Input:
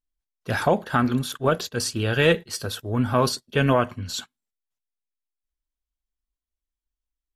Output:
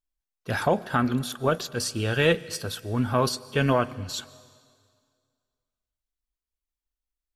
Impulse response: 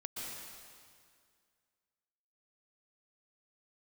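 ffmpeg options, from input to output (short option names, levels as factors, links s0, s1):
-filter_complex "[0:a]asplit=2[s0][s1];[1:a]atrim=start_sample=2205,highshelf=f=4800:g=6[s2];[s1][s2]afir=irnorm=-1:irlink=0,volume=0.106[s3];[s0][s3]amix=inputs=2:normalize=0,volume=0.708"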